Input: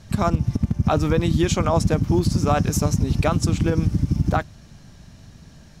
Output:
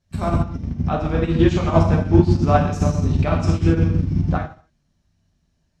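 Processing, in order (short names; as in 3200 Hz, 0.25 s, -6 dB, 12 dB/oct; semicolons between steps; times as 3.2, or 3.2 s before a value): treble ducked by the level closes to 3000 Hz, closed at -14.5 dBFS; non-linear reverb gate 0.31 s falling, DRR -3 dB; upward expander 2.5:1, over -29 dBFS; gain +2 dB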